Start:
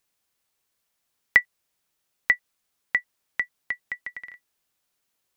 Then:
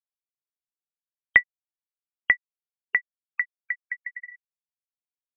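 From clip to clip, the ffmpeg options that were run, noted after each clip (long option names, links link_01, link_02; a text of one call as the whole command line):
ffmpeg -i in.wav -af "afftfilt=real='re*gte(hypot(re,im),0.0316)':imag='im*gte(hypot(re,im),0.0316)':win_size=1024:overlap=0.75,volume=1dB" out.wav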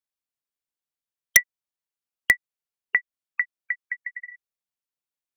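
ffmpeg -i in.wav -af "aeval=exprs='(mod(1.88*val(0)+1,2)-1)/1.88':channel_layout=same,volume=1.5dB" out.wav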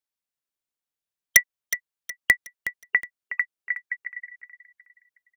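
ffmpeg -i in.wav -af "aecho=1:1:367|734|1101|1468:0.251|0.0929|0.0344|0.0127" out.wav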